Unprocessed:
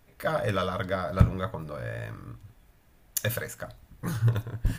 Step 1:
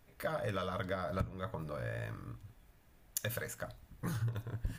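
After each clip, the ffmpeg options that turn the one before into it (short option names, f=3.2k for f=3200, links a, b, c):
-af "acompressor=threshold=-29dB:ratio=6,volume=-4dB"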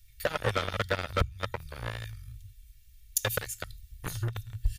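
-filter_complex "[0:a]aecho=1:1:2.2:0.66,acrossover=split=100|2600[a][b][c];[b]acrusher=bits=4:mix=0:aa=0.5[d];[a][d][c]amix=inputs=3:normalize=0,volume=7.5dB"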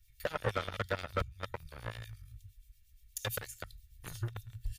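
-filter_complex "[0:a]acrossover=split=2300[a][b];[a]aeval=exprs='val(0)*(1-0.7/2+0.7/2*cos(2*PI*8.5*n/s))':c=same[c];[b]aeval=exprs='val(0)*(1-0.7/2-0.7/2*cos(2*PI*8.5*n/s))':c=same[d];[c][d]amix=inputs=2:normalize=0,volume=-3.5dB"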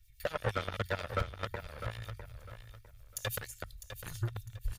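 -af "aphaser=in_gain=1:out_gain=1:delay=1.8:decay=0.25:speed=1.4:type=sinusoidal,aecho=1:1:653|1306|1959:0.299|0.0836|0.0234"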